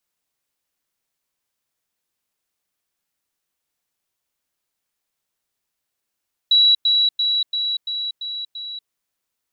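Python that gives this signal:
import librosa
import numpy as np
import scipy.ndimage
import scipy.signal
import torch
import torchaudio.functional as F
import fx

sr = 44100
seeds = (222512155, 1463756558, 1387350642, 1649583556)

y = fx.level_ladder(sr, hz=3910.0, from_db=-10.5, step_db=-3.0, steps=7, dwell_s=0.24, gap_s=0.1)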